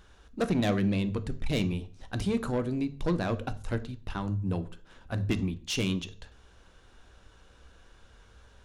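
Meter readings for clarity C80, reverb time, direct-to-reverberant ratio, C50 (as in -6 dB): 21.5 dB, 0.45 s, 10.5 dB, 16.5 dB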